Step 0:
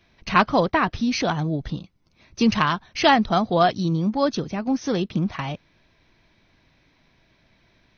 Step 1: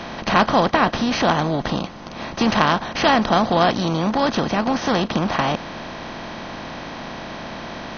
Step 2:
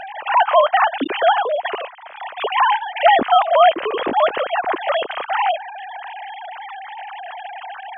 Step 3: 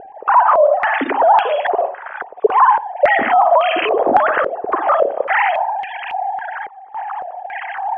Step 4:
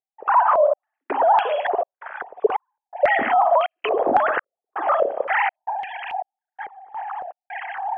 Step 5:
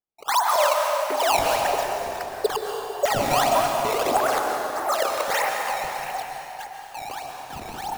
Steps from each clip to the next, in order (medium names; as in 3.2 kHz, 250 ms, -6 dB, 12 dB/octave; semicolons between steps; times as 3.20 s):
spectral levelling over time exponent 0.4; trim -3 dB
formants replaced by sine waves; trim +2 dB
reverberation, pre-delay 48 ms, DRR 9 dB; loudness maximiser +12 dB; step-sequenced low-pass 3.6 Hz 430–2600 Hz; trim -10 dB
trance gate ".xxx..xxxx" 82 bpm -60 dB; trim -5 dB
decimation with a swept rate 16×, swing 160% 1.6 Hz; plate-style reverb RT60 3.3 s, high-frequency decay 0.75×, pre-delay 110 ms, DRR 1 dB; trim -5 dB